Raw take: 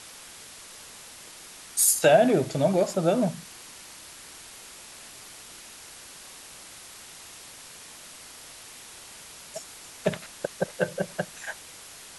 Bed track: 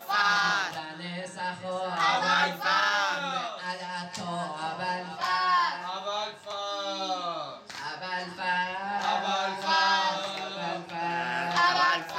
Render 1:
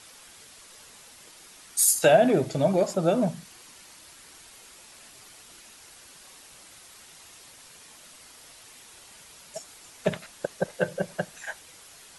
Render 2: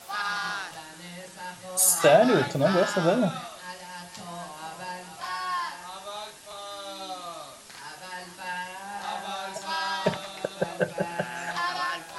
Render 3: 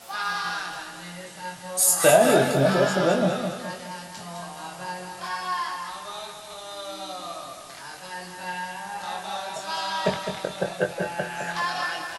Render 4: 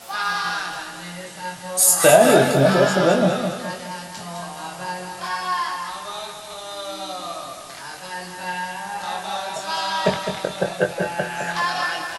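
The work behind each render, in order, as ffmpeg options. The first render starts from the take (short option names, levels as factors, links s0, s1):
-af "afftdn=nr=6:nf=-46"
-filter_complex "[1:a]volume=0.501[s0];[0:a][s0]amix=inputs=2:normalize=0"
-filter_complex "[0:a]asplit=2[s0][s1];[s1]adelay=22,volume=0.596[s2];[s0][s2]amix=inputs=2:normalize=0,asplit=2[s3][s4];[s4]aecho=0:1:209|418|627|836|1045:0.447|0.192|0.0826|0.0355|0.0153[s5];[s3][s5]amix=inputs=2:normalize=0"
-af "volume=1.68,alimiter=limit=0.891:level=0:latency=1"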